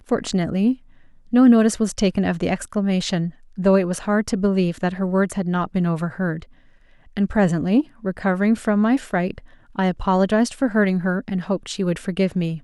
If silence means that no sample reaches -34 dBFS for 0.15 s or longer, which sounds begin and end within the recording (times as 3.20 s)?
1.33–3.30 s
3.58–6.43 s
7.17–7.82 s
8.04–9.39 s